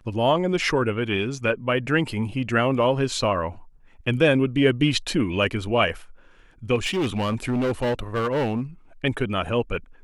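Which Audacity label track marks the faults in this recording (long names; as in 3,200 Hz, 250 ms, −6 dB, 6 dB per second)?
6.750000	8.610000	clipping −20 dBFS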